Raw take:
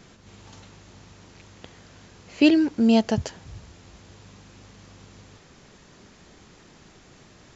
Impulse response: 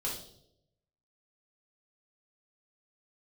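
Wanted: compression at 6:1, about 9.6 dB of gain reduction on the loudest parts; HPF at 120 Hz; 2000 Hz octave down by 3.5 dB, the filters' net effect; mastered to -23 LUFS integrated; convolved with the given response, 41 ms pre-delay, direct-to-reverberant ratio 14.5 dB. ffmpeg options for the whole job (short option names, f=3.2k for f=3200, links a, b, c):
-filter_complex "[0:a]highpass=120,equalizer=f=2k:t=o:g=-5.5,acompressor=threshold=-23dB:ratio=6,asplit=2[a][b];[1:a]atrim=start_sample=2205,adelay=41[c];[b][c]afir=irnorm=-1:irlink=0,volume=-17.5dB[d];[a][d]amix=inputs=2:normalize=0,volume=6.5dB"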